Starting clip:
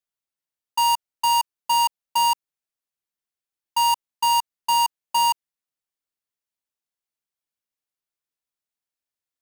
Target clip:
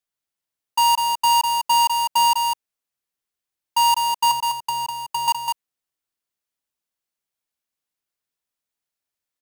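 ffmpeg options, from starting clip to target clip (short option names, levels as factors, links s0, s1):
-filter_complex "[0:a]asettb=1/sr,asplit=3[s0][s1][s2];[s0]atrim=end=4.314[s3];[s1]atrim=start=4.31:end=5.28,asetpts=PTS-STARTPTS,afade=t=in:d=0.004:c=qsin,afade=t=out:st=0.966:d=0.004:c=qsin,acrossover=split=460[s4][s5];[s5]acompressor=threshold=0.0501:ratio=5[s6];[s4][s6]amix=inputs=2:normalize=0[s7];[s2]atrim=start=5.276[s8];[s3][s7]acrossfade=d=0.004:c1=hsin:c2=qsin[s9];[s9][s8]acrossfade=d=0.004:c1=qsin:c2=hsin,aecho=1:1:201:0.562,volume=1.33"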